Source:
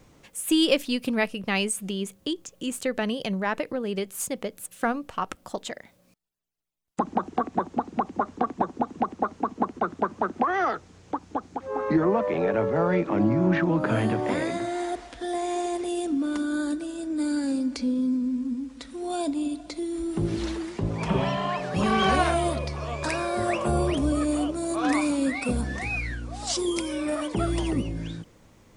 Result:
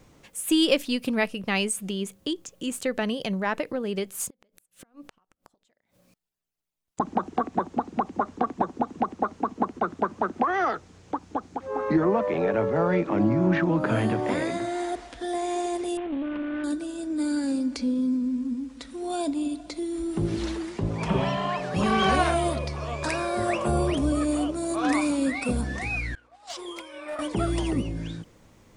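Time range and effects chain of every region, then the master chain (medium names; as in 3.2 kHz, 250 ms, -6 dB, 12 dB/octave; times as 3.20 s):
4.29–7.00 s: compression, threshold -38 dBFS + inverted gate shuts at -32 dBFS, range -28 dB
15.97–16.64 s: CVSD coder 16 kbps + valve stage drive 24 dB, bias 0.5 + distance through air 63 m
26.15–27.19 s: expander -27 dBFS + three-band isolator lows -22 dB, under 500 Hz, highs -13 dB, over 3.2 kHz + hard clipper -28.5 dBFS
whole clip: none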